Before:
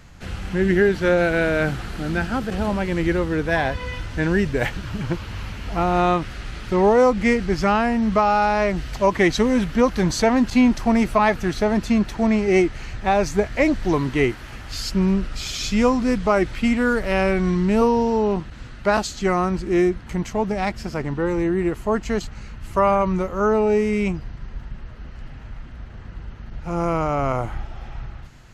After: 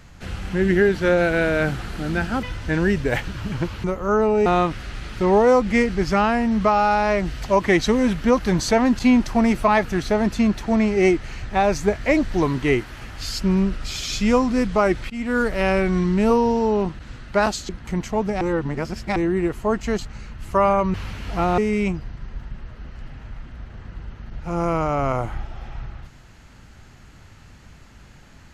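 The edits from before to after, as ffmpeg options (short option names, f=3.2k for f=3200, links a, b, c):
-filter_complex "[0:a]asplit=10[a][b][c][d][e][f][g][h][i][j];[a]atrim=end=2.432[k];[b]atrim=start=3.918:end=5.332[l];[c]atrim=start=23.158:end=23.782[m];[d]atrim=start=5.968:end=16.61,asetpts=PTS-STARTPTS,afade=t=out:st=10.638:d=0.004:c=hsin:silence=0.0944061[n];[e]atrim=start=16.61:end=19.202,asetpts=PTS-STARTPTS,afade=t=in:d=0.31:silence=0.0944061[o];[f]atrim=start=19.908:end=20.632[p];[g]atrim=start=20.628:end=21.382,asetpts=PTS-STARTPTS,areverse[q];[h]atrim=start=21.378:end=23.162[r];[i]atrim=start=5.328:end=5.972[s];[j]atrim=start=23.778[t];[k][l]acrossfade=d=0.004:c1=hsin:c2=hsin[u];[u][m]acrossfade=d=0.004:c1=hsin:c2=hsin[v];[n][o]concat=n=2:v=0:a=1[w];[v][w]acrossfade=d=0.004:c1=hsin:c2=hsin[x];[x][p]acrossfade=d=0.004:c1=hsin:c2=hsin[y];[y][q]acrossfade=d=0.004:c1=hsin:c2=hsin[z];[z][r]acrossfade=d=0.004:c1=hsin:c2=hsin[aa];[aa][s]acrossfade=d=0.004:c1=hsin:c2=hsin[ab];[ab][t]acrossfade=d=0.004:c1=hsin:c2=hsin"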